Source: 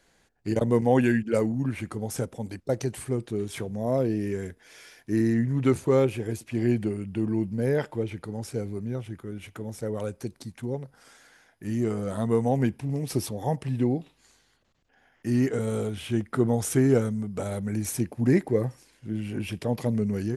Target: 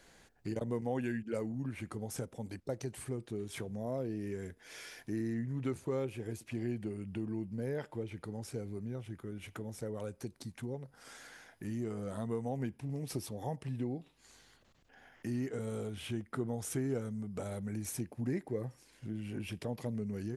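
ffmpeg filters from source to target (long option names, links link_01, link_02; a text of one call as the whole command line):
ffmpeg -i in.wav -af "acompressor=threshold=-50dB:ratio=2,volume=3dB" out.wav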